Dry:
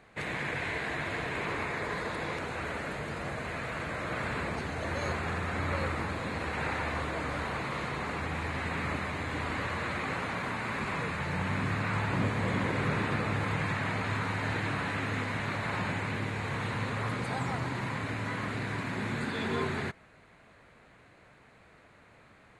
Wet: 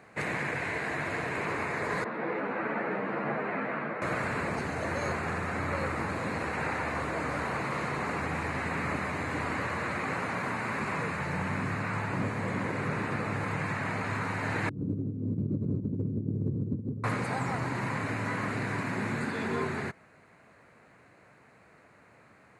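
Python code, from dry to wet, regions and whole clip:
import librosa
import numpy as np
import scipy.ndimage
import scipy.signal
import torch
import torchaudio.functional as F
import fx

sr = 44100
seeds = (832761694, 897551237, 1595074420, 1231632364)

y = fx.chain(x, sr, fx.highpass(hz=170.0, slope=24),
    fx.air_absorb(metres=480.0),
    fx.ensemble(), at=(2.04, 4.02))
y = fx.chain(y, sr, fx.cheby2_lowpass(hz=720.0, order=4, stop_db=40),
    fx.over_compress(threshold_db=-39.0, ratio=-0.5), at=(14.69, 17.04))
y = scipy.signal.sosfilt(scipy.signal.butter(2, 100.0, 'highpass', fs=sr, output='sos'), y)
y = fx.peak_eq(y, sr, hz=3400.0, db=-10.0, octaves=0.48)
y = fx.rider(y, sr, range_db=10, speed_s=0.5)
y = y * 10.0 ** (2.5 / 20.0)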